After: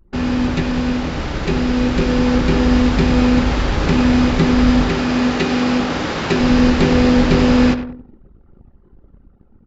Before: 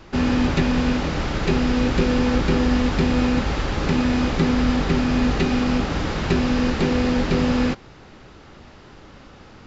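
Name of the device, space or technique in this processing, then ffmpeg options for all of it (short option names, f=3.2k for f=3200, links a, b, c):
voice memo with heavy noise removal: -filter_complex "[0:a]asettb=1/sr,asplit=3[a][b][c];[a]atrim=end=4.894[d];[b]atrim=start=4.89:end=6.41,asetpts=PTS-STARTPTS,afade=t=in:d=0.004:c=qsin,afade=t=out:st=1.516:d=0.004:c=qsin,highpass=f=250:p=1[e];[c]atrim=start=6.406[f];[d][e]acrossfade=d=0.004:c1=hsin:c2=qsin[g];[g][f]acrossfade=d=0.004:c1=qsin:c2=hsin,aecho=1:1:97|194|291|388|485:0.251|0.123|0.0603|0.0296|0.0145,anlmdn=2.51,dynaudnorm=f=880:g=5:m=11.5dB"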